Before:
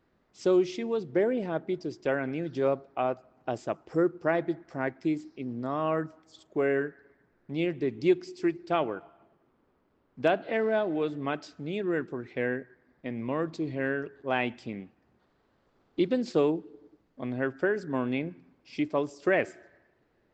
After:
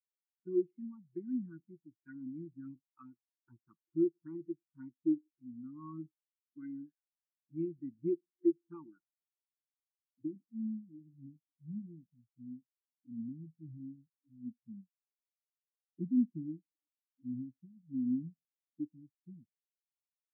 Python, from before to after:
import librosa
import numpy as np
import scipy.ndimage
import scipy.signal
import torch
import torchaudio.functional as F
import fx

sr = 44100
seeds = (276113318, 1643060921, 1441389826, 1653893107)

y = scipy.signal.sosfilt(scipy.signal.cheby1(4, 1.0, [350.0, 890.0], 'bandstop', fs=sr, output='sos'), x)
y = fx.dynamic_eq(y, sr, hz=490.0, q=1.3, threshold_db=-40.0, ratio=4.0, max_db=-8)
y = fx.filter_sweep_lowpass(y, sr, from_hz=1800.0, to_hz=230.0, start_s=8.59, end_s=10.91, q=1.2)
y = fx.env_flanger(y, sr, rest_ms=5.2, full_db=-29.0)
y = fx.spectral_expand(y, sr, expansion=2.5)
y = y * librosa.db_to_amplitude(2.5)